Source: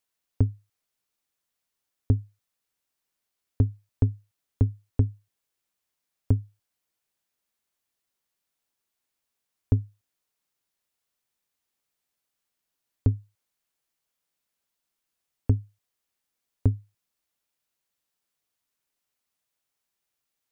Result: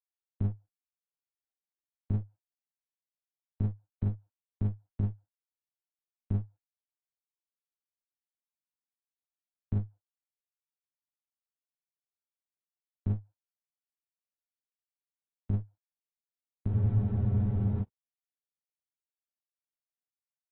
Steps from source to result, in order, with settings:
mu-law and A-law mismatch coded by A
in parallel at +1.5 dB: compressor whose output falls as the input rises −25 dBFS, ratio −0.5
on the sum: dynamic equaliser 170 Hz, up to +4 dB, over −42 dBFS, Q 3.4
brickwall limiter −12.5 dBFS, peak gain reduction 4.5 dB
low-pass filter 1,100 Hz 24 dB per octave
comb filter 1.3 ms, depth 73%
asymmetric clip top −30.5 dBFS, bottom −10 dBFS
pitch vibrato 6.1 Hz 28 cents
frozen spectrum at 0:16.72, 1.11 s
level −7.5 dB
AAC 16 kbit/s 24,000 Hz

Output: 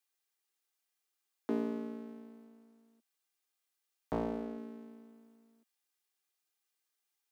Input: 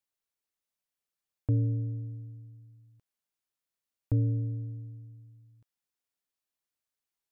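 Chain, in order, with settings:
lower of the sound and its delayed copy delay 2.5 ms
Butterworth high-pass 210 Hz 48 dB per octave
tilt shelving filter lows −3.5 dB, about 680 Hz
floating-point word with a short mantissa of 6 bits
0:02.44–0:04.58: highs frequency-modulated by the lows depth 0.72 ms
level +3 dB

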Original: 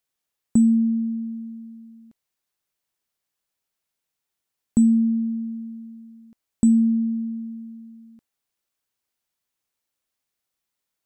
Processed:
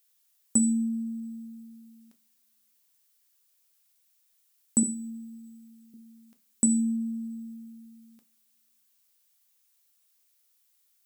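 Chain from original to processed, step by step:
0:04.83–0:05.94: high-pass filter 380 Hz 12 dB per octave
spectral tilt +4 dB per octave
coupled-rooms reverb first 0.35 s, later 2.5 s, from −28 dB, DRR 7 dB
level −1 dB

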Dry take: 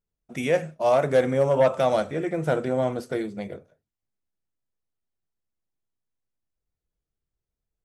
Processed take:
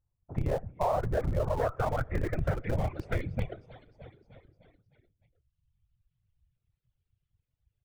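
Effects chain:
repeating echo 305 ms, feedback 59%, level −17 dB
low-pass filter sweep 960 Hz → 3,100 Hz, 0:00.76–0:03.66
random phases in short frames
reverb reduction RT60 1.2 s
automatic gain control gain up to 3 dB
in parallel at −5.5 dB: comparator with hysteresis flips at −20 dBFS
on the sum: low shelf with overshoot 160 Hz +11.5 dB, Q 1.5
downward compressor 5 to 1, threshold −23 dBFS, peak gain reduction 13.5 dB
level −3.5 dB

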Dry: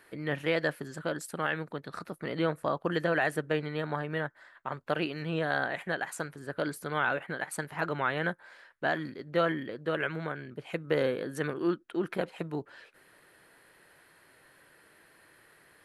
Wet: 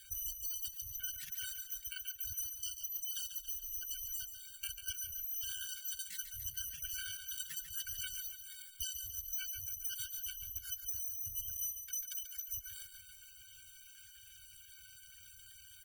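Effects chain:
samples in bit-reversed order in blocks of 256 samples
gate on every frequency bin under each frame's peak −15 dB strong
high-shelf EQ 2,300 Hz −7 dB
downward compressor 16 to 1, threshold −48 dBFS, peak gain reduction 20 dB
gate on every frequency bin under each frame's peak −15 dB strong
elliptic band-stop filter 140–1,700 Hz, stop band 40 dB
on a send: repeating echo 141 ms, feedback 53%, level −8.5 dB
on the sum: pitch shifter +1.5 semitones
hollow resonant body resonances 410/660/1,500 Hz, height 10 dB, ringing for 45 ms
level +11.5 dB

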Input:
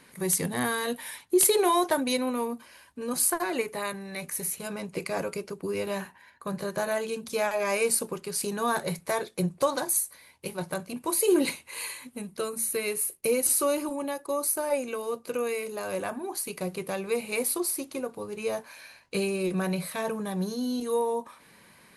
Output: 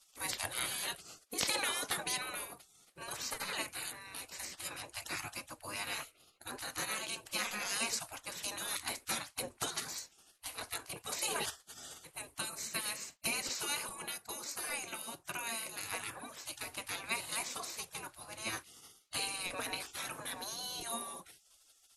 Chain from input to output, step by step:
gate on every frequency bin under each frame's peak −20 dB weak
treble cut that deepens with the level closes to 1,500 Hz, closed at −21 dBFS
level +3.5 dB

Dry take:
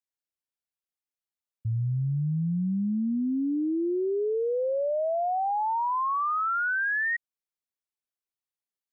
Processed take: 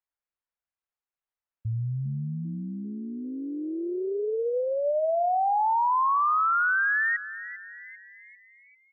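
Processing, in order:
low-pass filter 1,700 Hz
parametric band 220 Hz −14.5 dB 1.9 octaves
echo with shifted repeats 396 ms, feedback 49%, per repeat +100 Hz, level −14.5 dB
level +6 dB

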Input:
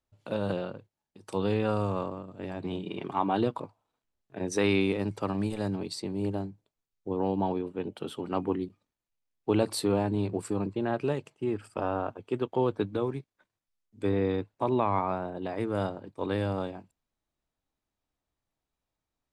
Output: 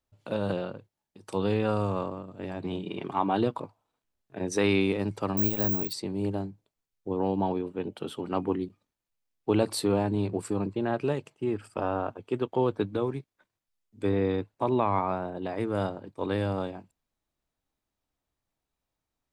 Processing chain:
0:05.37–0:05.93: bad sample-rate conversion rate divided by 2×, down filtered, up zero stuff
level +1 dB

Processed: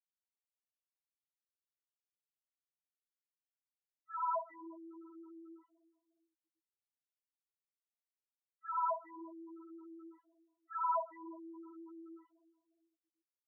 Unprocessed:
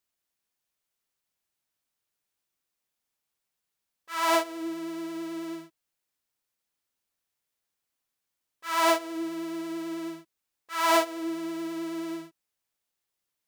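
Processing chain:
high-pass filter 180 Hz 6 dB per octave
first difference
on a send: feedback echo with a low-pass in the loop 359 ms, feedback 40%, low-pass 1,100 Hz, level −17 dB
on the sum: spectral peaks only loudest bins 2
low-pass that shuts in the quiet parts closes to 750 Hz, open at −47.5 dBFS
level +11.5 dB

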